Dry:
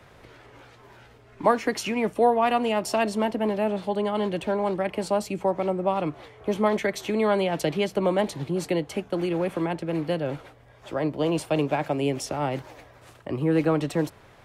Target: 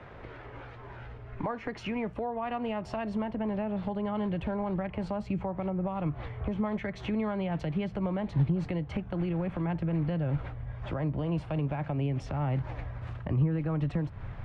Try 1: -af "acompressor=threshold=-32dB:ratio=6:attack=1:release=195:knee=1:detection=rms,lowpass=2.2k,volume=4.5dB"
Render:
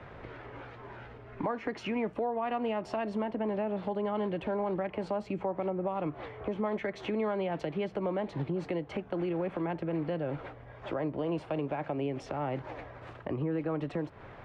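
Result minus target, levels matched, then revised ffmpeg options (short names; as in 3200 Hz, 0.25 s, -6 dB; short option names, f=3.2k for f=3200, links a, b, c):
125 Hz band -7.5 dB
-af "acompressor=threshold=-32dB:ratio=6:attack=1:release=195:knee=1:detection=rms,lowpass=2.2k,asubboost=boost=8:cutoff=130,volume=4.5dB"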